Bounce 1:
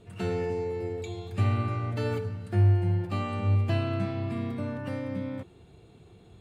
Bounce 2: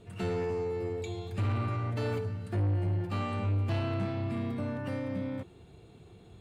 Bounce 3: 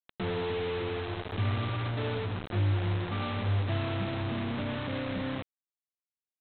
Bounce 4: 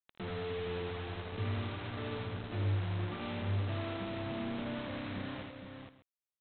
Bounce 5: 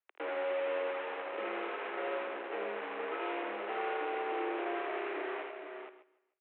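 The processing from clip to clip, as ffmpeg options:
ffmpeg -i in.wav -af "asoftclip=type=tanh:threshold=-25.5dB" out.wav
ffmpeg -i in.wav -af "aemphasis=mode=reproduction:type=75kf,aresample=8000,acrusher=bits=5:mix=0:aa=0.000001,aresample=44100" out.wav
ffmpeg -i in.wav -af "aecho=1:1:56|81|392|466|598:0.2|0.631|0.126|0.473|0.112,volume=-8dB" out.wav
ffmpeg -i in.wav -af "aecho=1:1:148|296|444:0.0841|0.0387|0.0178,highpass=frequency=260:width_type=q:width=0.5412,highpass=frequency=260:width_type=q:width=1.307,lowpass=frequency=2600:width_type=q:width=0.5176,lowpass=frequency=2600:width_type=q:width=0.7071,lowpass=frequency=2600:width_type=q:width=1.932,afreqshift=110,volume=5.5dB" out.wav

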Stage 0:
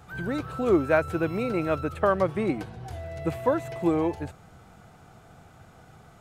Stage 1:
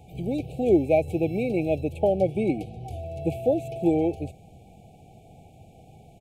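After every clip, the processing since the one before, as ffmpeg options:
ffmpeg -i in.wav -af "afftfilt=real='re*(1-between(b*sr/4096,850,2200))':imag='im*(1-between(b*sr/4096,850,2200))':win_size=4096:overlap=0.75,firequalizer=gain_entry='entry(1800,0);entry(5100,-8);entry(8300,-3)':delay=0.05:min_phase=1,volume=2dB" out.wav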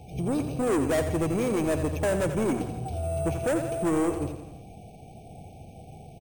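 ffmpeg -i in.wav -af "aresample=11025,asoftclip=type=tanh:threshold=-26.5dB,aresample=44100,aecho=1:1:86|172|258|344|430|516:0.355|0.195|0.107|0.059|0.0325|0.0179,acrusher=samples=5:mix=1:aa=0.000001,volume=4dB" out.wav

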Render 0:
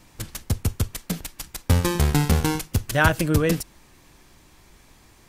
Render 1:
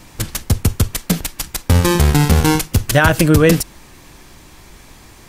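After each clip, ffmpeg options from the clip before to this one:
ffmpeg -i in.wav -af "alimiter=level_in=12dB:limit=-1dB:release=50:level=0:latency=1,volume=-1dB" out.wav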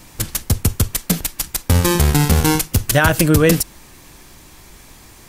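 ffmpeg -i in.wav -af "highshelf=frequency=7300:gain=7,volume=-2dB" out.wav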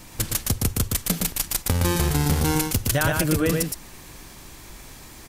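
ffmpeg -i in.wav -filter_complex "[0:a]acompressor=threshold=-18dB:ratio=6,asplit=2[link_01][link_02];[link_02]aecho=0:1:116:0.668[link_03];[link_01][link_03]amix=inputs=2:normalize=0,volume=-1.5dB" out.wav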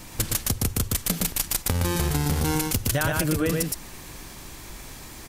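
ffmpeg -i in.wav -af "acompressor=threshold=-22dB:ratio=6,volume=2dB" out.wav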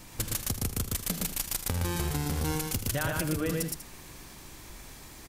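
ffmpeg -i in.wav -af "aecho=1:1:79:0.282,volume=-6.5dB" out.wav

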